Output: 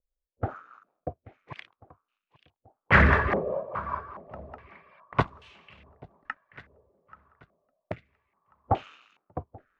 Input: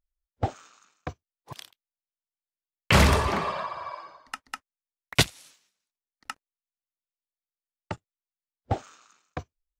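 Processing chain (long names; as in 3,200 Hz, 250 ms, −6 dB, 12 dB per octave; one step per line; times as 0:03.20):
feedback echo with a long and a short gap by turns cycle 1,389 ms, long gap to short 1.5 to 1, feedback 32%, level −21.5 dB
rotating-speaker cabinet horn 5 Hz, later 0.6 Hz, at 0:04.87
low-pass on a step sequencer 2.4 Hz 520–2,800 Hz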